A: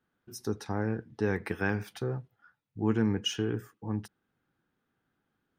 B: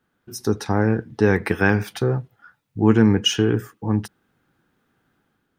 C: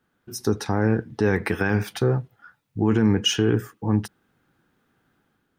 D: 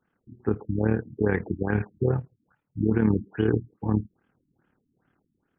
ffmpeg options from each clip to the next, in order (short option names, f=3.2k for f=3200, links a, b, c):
-af "dynaudnorm=f=110:g=7:m=4dB,volume=8dB"
-af "alimiter=limit=-10.5dB:level=0:latency=1:release=22"
-af "tremolo=f=37:d=0.621,afftfilt=real='re*lt(b*sr/1024,320*pow(3600/320,0.5+0.5*sin(2*PI*2.4*pts/sr)))':imag='im*lt(b*sr/1024,320*pow(3600/320,0.5+0.5*sin(2*PI*2.4*pts/sr)))':win_size=1024:overlap=0.75"